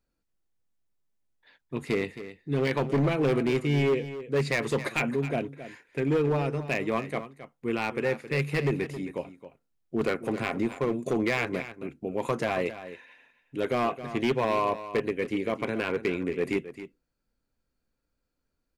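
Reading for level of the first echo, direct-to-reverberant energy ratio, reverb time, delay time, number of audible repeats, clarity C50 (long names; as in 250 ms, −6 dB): −13.0 dB, no reverb audible, no reverb audible, 268 ms, 1, no reverb audible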